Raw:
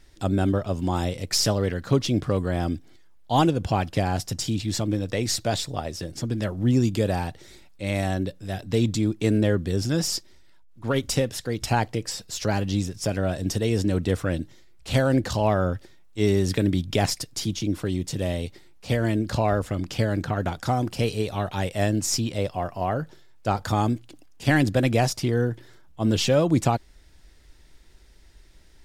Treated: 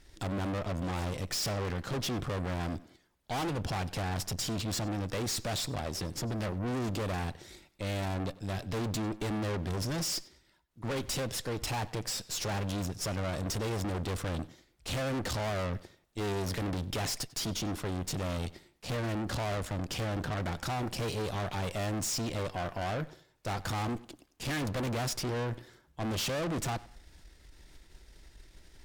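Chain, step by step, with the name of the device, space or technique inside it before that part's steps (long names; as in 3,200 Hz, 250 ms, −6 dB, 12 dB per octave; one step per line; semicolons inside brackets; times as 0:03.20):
rockabilly slapback (tube saturation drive 35 dB, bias 0.75; tape delay 97 ms, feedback 33%, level −18 dB, low-pass 5,000 Hz)
level +3.5 dB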